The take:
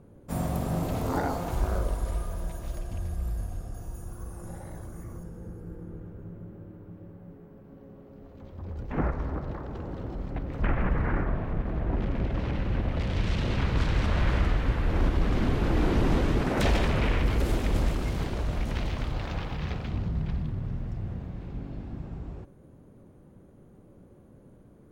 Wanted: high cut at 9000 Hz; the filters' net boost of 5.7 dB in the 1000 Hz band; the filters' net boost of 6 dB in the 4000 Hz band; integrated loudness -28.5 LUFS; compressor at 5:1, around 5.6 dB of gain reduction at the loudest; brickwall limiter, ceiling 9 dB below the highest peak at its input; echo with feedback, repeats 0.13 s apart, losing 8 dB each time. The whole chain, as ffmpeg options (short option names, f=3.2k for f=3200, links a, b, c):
-af "lowpass=9k,equalizer=f=1k:t=o:g=7,equalizer=f=4k:t=o:g=7.5,acompressor=threshold=-25dB:ratio=5,alimiter=level_in=1.5dB:limit=-24dB:level=0:latency=1,volume=-1.5dB,aecho=1:1:130|260|390|520|650:0.398|0.159|0.0637|0.0255|0.0102,volume=7dB"